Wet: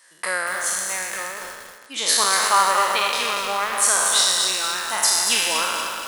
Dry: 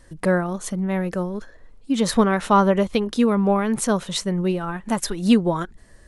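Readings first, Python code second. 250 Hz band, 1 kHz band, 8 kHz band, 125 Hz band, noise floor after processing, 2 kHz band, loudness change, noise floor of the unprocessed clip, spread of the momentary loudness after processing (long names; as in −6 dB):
−22.5 dB, +3.5 dB, +14.0 dB, below −20 dB, −46 dBFS, +8.5 dB, +2.5 dB, −49 dBFS, 12 LU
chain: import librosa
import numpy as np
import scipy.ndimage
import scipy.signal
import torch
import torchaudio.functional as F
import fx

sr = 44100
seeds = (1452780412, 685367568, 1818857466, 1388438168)

y = fx.spec_trails(x, sr, decay_s=1.86)
y = scipy.signal.sosfilt(scipy.signal.butter(2, 1200.0, 'highpass', fs=sr, output='sos'), y)
y = fx.high_shelf(y, sr, hz=8000.0, db=4.5)
y = fx.echo_crushed(y, sr, ms=237, feedback_pct=55, bits=6, wet_db=-5.0)
y = y * librosa.db_to_amplitude(2.5)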